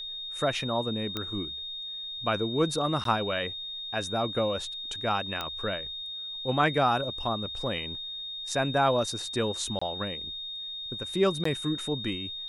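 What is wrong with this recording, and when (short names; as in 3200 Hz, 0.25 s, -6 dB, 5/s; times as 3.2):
tone 3700 Hz -35 dBFS
1.17 pop -17 dBFS
3.04–3.05 gap 13 ms
5.41 pop -17 dBFS
9.79–9.81 gap 25 ms
11.44–11.45 gap 14 ms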